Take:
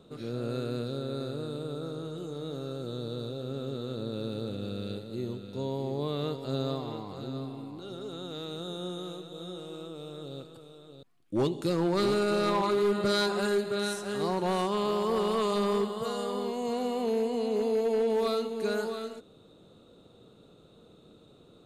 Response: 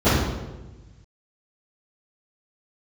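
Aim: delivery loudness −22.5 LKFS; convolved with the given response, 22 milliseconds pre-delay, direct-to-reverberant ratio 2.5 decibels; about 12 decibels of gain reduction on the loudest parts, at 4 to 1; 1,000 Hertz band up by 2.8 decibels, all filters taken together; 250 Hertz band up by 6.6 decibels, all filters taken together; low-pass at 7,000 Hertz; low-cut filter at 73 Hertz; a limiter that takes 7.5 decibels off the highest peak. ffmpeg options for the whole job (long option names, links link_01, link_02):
-filter_complex "[0:a]highpass=73,lowpass=7000,equalizer=frequency=250:width_type=o:gain=8.5,equalizer=frequency=1000:width_type=o:gain=3,acompressor=threshold=-34dB:ratio=4,alimiter=level_in=7dB:limit=-24dB:level=0:latency=1,volume=-7dB,asplit=2[link_01][link_02];[1:a]atrim=start_sample=2205,adelay=22[link_03];[link_02][link_03]afir=irnorm=-1:irlink=0,volume=-25dB[link_04];[link_01][link_04]amix=inputs=2:normalize=0,volume=10dB"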